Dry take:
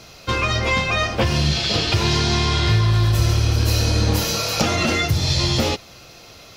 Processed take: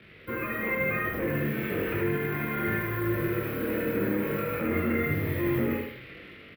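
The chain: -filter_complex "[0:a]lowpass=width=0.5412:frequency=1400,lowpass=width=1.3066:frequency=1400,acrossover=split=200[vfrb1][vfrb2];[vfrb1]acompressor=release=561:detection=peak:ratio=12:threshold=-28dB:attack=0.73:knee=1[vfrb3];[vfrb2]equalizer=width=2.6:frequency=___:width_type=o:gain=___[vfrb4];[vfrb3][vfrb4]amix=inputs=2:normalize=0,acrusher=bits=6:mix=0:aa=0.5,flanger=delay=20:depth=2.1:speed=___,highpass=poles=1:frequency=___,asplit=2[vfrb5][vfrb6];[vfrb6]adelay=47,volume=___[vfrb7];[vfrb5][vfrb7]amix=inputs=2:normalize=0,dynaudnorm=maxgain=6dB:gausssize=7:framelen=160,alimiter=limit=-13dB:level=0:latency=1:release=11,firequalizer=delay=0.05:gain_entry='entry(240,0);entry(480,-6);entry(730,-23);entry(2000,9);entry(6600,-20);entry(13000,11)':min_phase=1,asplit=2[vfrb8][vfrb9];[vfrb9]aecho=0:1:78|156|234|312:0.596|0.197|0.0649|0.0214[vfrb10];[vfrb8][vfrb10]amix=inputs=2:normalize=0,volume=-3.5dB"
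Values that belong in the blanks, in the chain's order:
690, 7, 0.94, 94, -7.5dB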